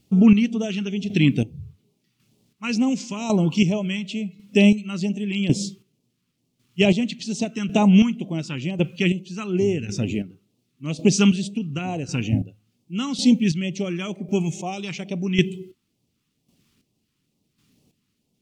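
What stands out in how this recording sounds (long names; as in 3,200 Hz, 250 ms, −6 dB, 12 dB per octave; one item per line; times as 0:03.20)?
a quantiser's noise floor 12 bits, dither none
chopped level 0.91 Hz, depth 65%, duty 30%
phaser sweep stages 2, 2.2 Hz, lowest notch 620–1,400 Hz
AAC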